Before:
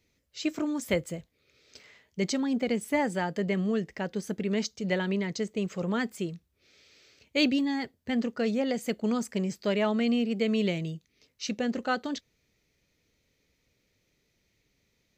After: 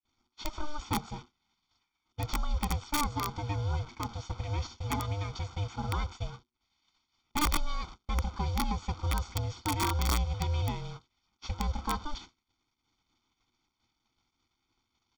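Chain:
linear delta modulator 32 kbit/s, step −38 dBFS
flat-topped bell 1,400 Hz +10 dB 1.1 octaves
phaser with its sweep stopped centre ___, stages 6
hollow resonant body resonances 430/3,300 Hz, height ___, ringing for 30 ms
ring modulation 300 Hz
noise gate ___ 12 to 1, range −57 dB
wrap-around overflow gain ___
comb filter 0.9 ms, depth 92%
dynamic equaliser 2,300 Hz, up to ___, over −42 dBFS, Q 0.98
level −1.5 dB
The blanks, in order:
430 Hz, 11 dB, −43 dBFS, 20.5 dB, −3 dB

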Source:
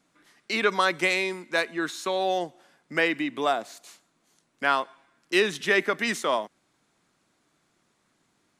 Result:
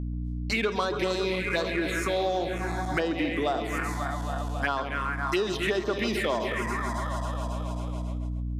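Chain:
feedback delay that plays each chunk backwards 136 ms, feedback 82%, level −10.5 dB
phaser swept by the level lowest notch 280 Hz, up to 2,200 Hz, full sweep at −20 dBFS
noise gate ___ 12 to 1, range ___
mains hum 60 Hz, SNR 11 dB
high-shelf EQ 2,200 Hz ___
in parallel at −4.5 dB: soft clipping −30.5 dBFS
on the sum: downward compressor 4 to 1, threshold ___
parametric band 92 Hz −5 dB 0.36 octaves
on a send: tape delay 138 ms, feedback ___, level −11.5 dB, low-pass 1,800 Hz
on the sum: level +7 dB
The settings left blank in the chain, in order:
−54 dBFS, −25 dB, −2.5 dB, −33 dBFS, 43%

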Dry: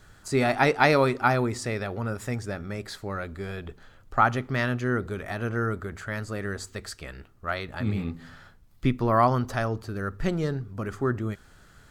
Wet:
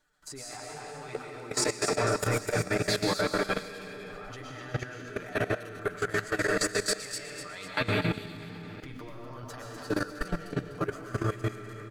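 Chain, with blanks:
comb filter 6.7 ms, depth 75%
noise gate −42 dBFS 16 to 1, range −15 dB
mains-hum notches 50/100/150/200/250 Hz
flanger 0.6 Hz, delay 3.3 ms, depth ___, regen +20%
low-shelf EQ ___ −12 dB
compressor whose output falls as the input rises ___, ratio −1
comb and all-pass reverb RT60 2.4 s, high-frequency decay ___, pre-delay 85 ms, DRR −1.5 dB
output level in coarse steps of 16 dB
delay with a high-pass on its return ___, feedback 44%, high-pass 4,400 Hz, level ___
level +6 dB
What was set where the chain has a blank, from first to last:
9.3 ms, 180 Hz, −38 dBFS, 0.8×, 249 ms, −6 dB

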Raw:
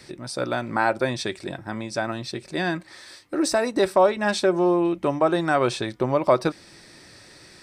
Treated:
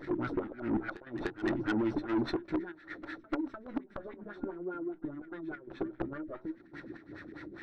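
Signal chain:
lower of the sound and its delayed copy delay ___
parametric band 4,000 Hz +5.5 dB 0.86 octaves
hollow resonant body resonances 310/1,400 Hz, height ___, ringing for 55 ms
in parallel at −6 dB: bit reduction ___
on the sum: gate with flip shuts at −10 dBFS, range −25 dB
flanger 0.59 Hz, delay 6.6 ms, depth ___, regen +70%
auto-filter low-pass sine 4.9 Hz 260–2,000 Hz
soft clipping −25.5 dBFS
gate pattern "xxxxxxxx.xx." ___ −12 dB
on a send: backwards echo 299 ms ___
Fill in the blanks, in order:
0.52 ms, 13 dB, 7 bits, 9.5 ms, 127 BPM, −14 dB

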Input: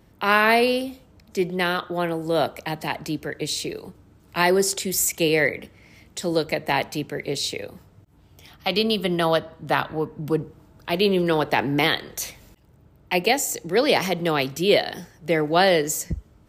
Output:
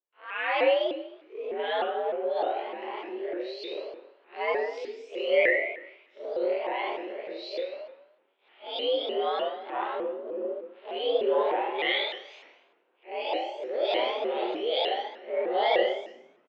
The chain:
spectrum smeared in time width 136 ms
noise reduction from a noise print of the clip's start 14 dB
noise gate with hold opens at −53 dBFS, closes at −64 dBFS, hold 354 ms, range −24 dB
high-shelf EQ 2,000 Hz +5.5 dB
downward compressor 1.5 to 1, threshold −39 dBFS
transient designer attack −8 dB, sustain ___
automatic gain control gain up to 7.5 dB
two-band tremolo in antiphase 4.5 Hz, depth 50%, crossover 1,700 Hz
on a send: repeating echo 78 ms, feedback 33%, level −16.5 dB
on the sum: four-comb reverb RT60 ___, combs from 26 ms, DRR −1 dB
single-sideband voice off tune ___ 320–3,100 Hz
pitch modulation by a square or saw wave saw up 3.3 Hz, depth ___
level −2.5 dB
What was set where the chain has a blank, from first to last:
+8 dB, 0.68 s, +73 Hz, 160 cents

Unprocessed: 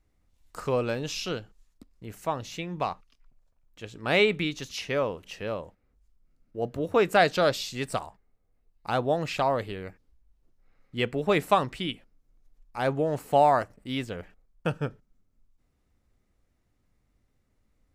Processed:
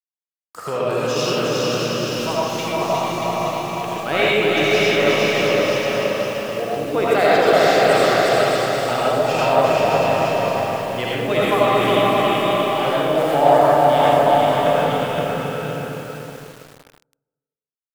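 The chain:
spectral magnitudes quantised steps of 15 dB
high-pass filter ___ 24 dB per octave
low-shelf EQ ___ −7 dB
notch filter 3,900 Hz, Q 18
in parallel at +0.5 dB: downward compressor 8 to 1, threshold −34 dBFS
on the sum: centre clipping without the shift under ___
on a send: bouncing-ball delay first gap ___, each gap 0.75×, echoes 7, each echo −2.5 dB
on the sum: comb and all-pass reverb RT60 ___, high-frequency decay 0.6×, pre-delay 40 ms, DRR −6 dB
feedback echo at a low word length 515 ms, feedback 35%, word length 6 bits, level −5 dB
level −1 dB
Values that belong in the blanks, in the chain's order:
70 Hz, 220 Hz, −45.5 dBFS, 360 ms, 1.4 s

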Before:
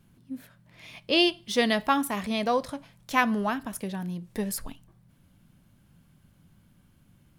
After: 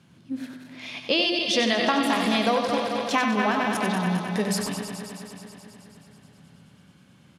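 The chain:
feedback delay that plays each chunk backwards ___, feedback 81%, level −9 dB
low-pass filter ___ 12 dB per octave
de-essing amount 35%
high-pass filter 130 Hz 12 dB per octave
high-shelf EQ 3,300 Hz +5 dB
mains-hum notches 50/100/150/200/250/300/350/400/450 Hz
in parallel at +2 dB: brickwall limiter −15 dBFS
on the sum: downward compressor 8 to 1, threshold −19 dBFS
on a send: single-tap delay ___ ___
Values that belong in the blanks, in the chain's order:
107 ms, 5,800 Hz, 94 ms, −6.5 dB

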